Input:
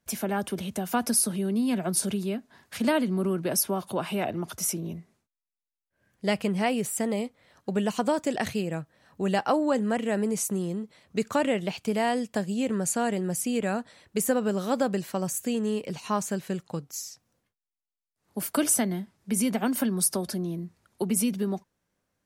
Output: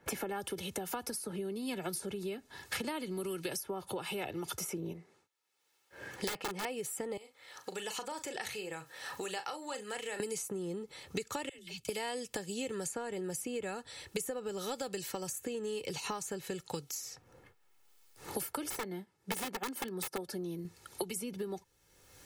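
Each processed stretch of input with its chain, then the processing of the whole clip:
4.93–6.65 HPF 290 Hz 6 dB/oct + high shelf 8400 Hz -11 dB + wrapped overs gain 24 dB
7.17–10.2 compressor 3:1, threshold -42 dBFS + HPF 1100 Hz 6 dB/oct + doubler 38 ms -9.5 dB
11.49–11.89 passive tone stack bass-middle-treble 6-0-2 + dispersion lows, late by 91 ms, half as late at 350 Hz
18.7–20.65 wrapped overs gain 19.5 dB + upward expander, over -44 dBFS
whole clip: compressor 3:1, threshold -32 dBFS; comb 2.3 ms, depth 60%; three-band squash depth 100%; gain -4.5 dB

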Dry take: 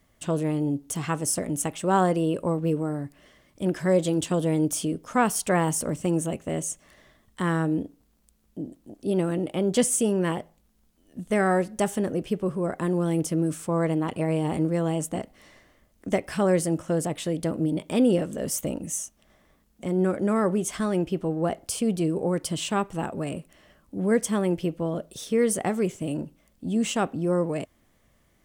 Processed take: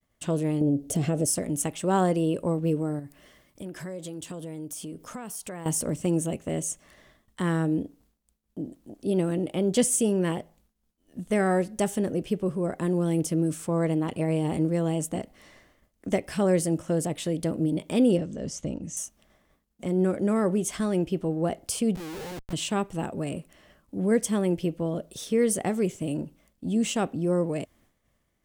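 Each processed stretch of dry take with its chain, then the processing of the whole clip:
0.61–1.26 resonant low shelf 790 Hz +7.5 dB, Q 3 + compressor 4:1, threshold -20 dBFS
2.99–5.66 high shelf 10000 Hz +8.5 dB + compressor 4:1, threshold -36 dBFS
18.17–18.97 ladder low-pass 7300 Hz, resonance 35% + low shelf 300 Hz +10 dB
21.95–22.53 ladder low-pass 990 Hz, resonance 70% + Schmitt trigger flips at -47.5 dBFS
whole clip: expander -56 dBFS; dynamic EQ 1200 Hz, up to -5 dB, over -41 dBFS, Q 0.96

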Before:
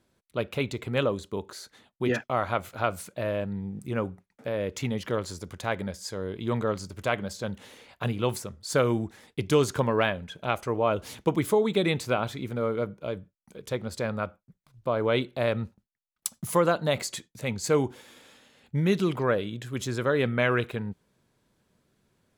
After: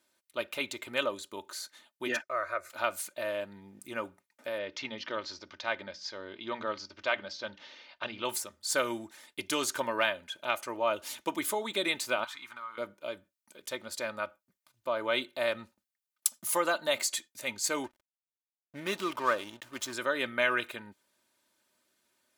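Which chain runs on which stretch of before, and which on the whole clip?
2.22–2.7 air absorption 53 m + fixed phaser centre 850 Hz, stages 6
4.58–8.25 steep low-pass 5600 Hz 48 dB/oct + notches 60/120/180/240/300 Hz
12.24–12.78 LPF 3900 Hz 6 dB/oct + resonant low shelf 720 Hz -13.5 dB, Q 3 + compressor 3:1, threshold -38 dBFS
17.84–19.93 bell 1100 Hz +9.5 dB 0.35 oct + backlash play -33.5 dBFS
whole clip: HPF 1200 Hz 6 dB/oct; high shelf 8700 Hz +5 dB; comb 3.3 ms, depth 59%

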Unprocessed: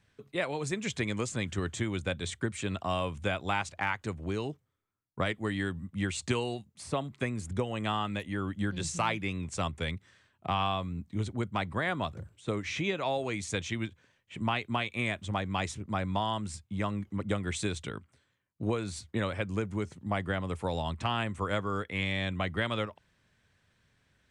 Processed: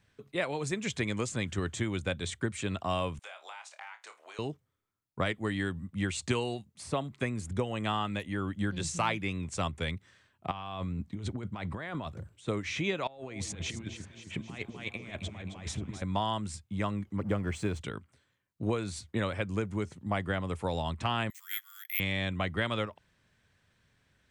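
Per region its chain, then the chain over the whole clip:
3.19–4.39 HPF 660 Hz 24 dB/oct + compressor 4:1, threshold -45 dBFS + flutter echo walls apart 4.6 m, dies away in 0.2 s
10.51–12.07 negative-ratio compressor -37 dBFS + high shelf 6800 Hz -7 dB
13.07–16.02 high shelf 4600 Hz -8.5 dB + negative-ratio compressor -39 dBFS, ratio -0.5 + echo with dull and thin repeats by turns 0.133 s, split 1000 Hz, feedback 76%, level -7.5 dB
17.18–17.81 G.711 law mismatch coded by mu + high shelf 2600 Hz -12 dB + notch 3700 Hz, Q 6.9
21.3–22 elliptic high-pass 1900 Hz, stop band 70 dB + careless resampling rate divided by 3×, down none, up zero stuff
whole clip: dry

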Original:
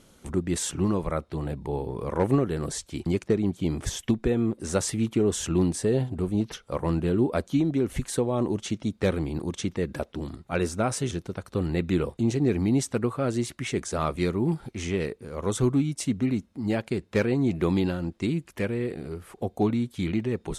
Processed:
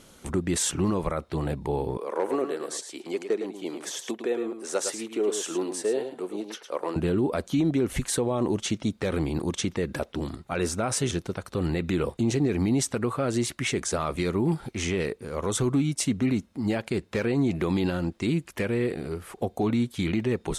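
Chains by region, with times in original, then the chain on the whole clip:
1.97–6.96 ladder high-pass 290 Hz, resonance 25% + echo 0.108 s -8.5 dB
whole clip: low shelf 380 Hz -4.5 dB; limiter -21.5 dBFS; gain +5.5 dB

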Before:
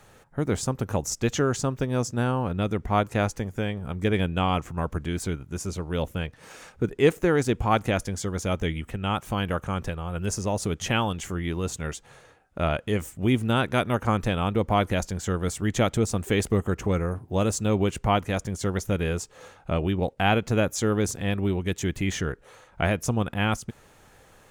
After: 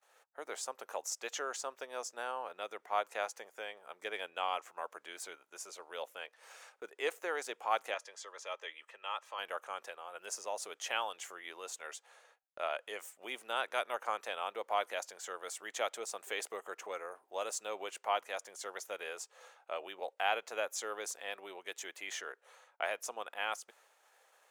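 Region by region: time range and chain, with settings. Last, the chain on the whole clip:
7.94–9.39 three-band isolator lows -13 dB, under 460 Hz, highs -17 dB, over 7200 Hz + notch comb 740 Hz
whole clip: HPF 550 Hz 24 dB/oct; gate -57 dBFS, range -25 dB; gain -8.5 dB

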